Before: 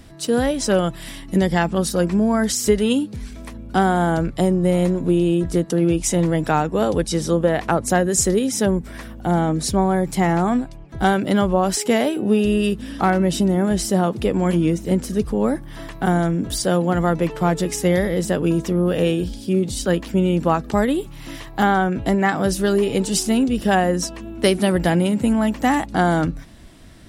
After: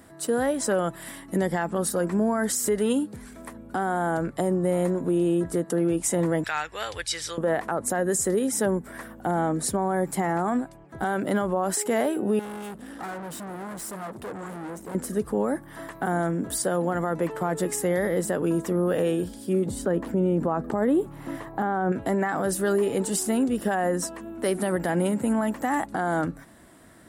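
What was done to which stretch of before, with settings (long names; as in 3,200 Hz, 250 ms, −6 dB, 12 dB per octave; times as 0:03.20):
0:06.44–0:07.38: drawn EQ curve 110 Hz 0 dB, 180 Hz −26 dB, 1,100 Hz −7 dB, 2,300 Hz +11 dB, 4,700 Hz +11 dB, 10,000 Hz −5 dB
0:12.39–0:14.95: tube saturation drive 30 dB, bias 0.6
0:19.66–0:21.92: tilt shelving filter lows +7 dB, about 1,500 Hz
whole clip: high-pass filter 370 Hz 6 dB per octave; flat-topped bell 3,800 Hz −10 dB; brickwall limiter −15.5 dBFS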